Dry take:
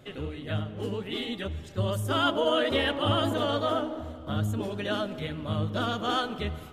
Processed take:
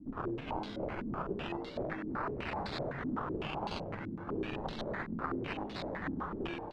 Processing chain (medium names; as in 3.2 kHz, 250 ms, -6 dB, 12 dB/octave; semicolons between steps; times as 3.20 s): tracing distortion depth 0.15 ms; in parallel at -3 dB: peak limiter -22.5 dBFS, peak gain reduction 9 dB; on the sum: compression 16:1, threshold -28 dBFS, peak gain reduction 11 dB; flange 1.1 Hz, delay 9.8 ms, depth 9.2 ms, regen -33%; integer overflow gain 30 dB; frequency shift -420 Hz; decimation with a swept rate 19×, swing 60% 0.32 Hz; on a send: frequency-shifting echo 95 ms, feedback 51%, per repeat +120 Hz, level -9 dB; on the sum: step-sequenced low-pass 7.9 Hz 270–4000 Hz; trim -5 dB